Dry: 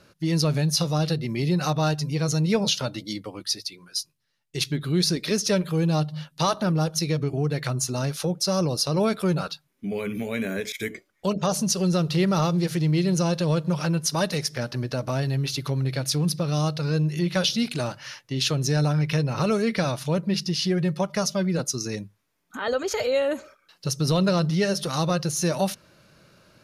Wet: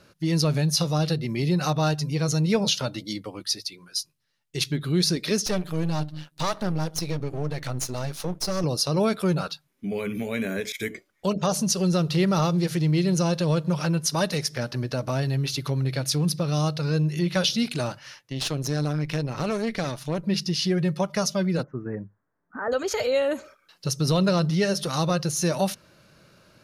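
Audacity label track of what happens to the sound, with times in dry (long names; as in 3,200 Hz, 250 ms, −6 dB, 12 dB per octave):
5.460000	8.640000	gain on one half-wave negative side −12 dB
17.990000	20.240000	tube saturation drive 19 dB, bias 0.8
21.630000	22.720000	elliptic low-pass filter 1,700 Hz, stop band 60 dB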